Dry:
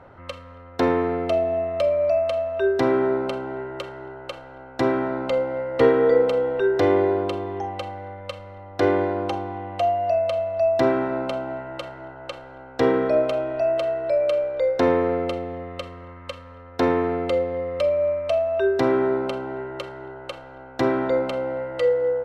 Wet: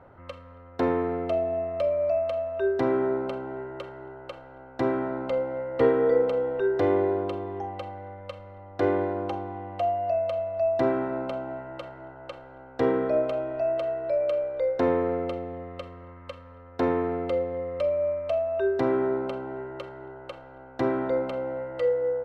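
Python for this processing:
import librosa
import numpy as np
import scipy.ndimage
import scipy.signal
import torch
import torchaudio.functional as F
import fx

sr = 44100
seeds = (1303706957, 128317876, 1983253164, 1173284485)

y = fx.high_shelf(x, sr, hz=2800.0, db=-10.0)
y = y * librosa.db_to_amplitude(-4.0)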